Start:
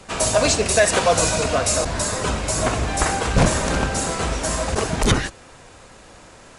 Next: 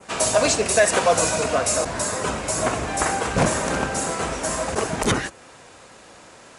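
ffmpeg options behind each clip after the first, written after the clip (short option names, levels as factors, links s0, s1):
-af "highpass=f=200:p=1,adynamicequalizer=threshold=0.0112:dfrequency=4000:dqfactor=1.1:tfrequency=4000:tqfactor=1.1:attack=5:release=100:ratio=0.375:range=2.5:mode=cutabove:tftype=bell"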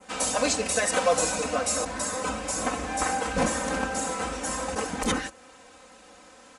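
-af "aecho=1:1:3.9:0.97,volume=0.398"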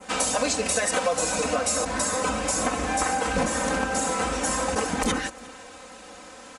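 -af "acompressor=threshold=0.0355:ratio=4,aecho=1:1:353:0.0668,volume=2.24"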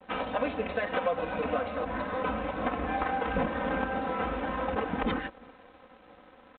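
-af "adynamicsmooth=sensitivity=1.5:basefreq=1700,aresample=8000,aeval=exprs='sgn(val(0))*max(abs(val(0))-0.00266,0)':c=same,aresample=44100,volume=0.668"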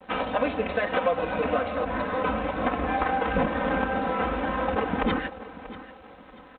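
-af "aecho=1:1:637|1274|1911:0.158|0.0539|0.0183,volume=1.68"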